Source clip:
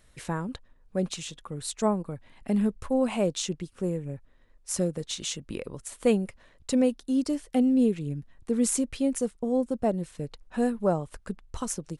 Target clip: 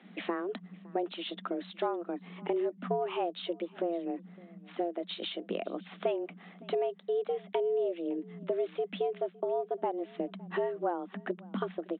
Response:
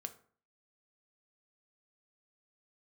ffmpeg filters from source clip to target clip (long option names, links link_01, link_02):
-filter_complex "[0:a]acompressor=threshold=-37dB:ratio=4,afreqshift=170,aresample=8000,aresample=44100,asplit=2[link_01][link_02];[link_02]aecho=0:1:561:0.0631[link_03];[link_01][link_03]amix=inputs=2:normalize=0,volume=6dB"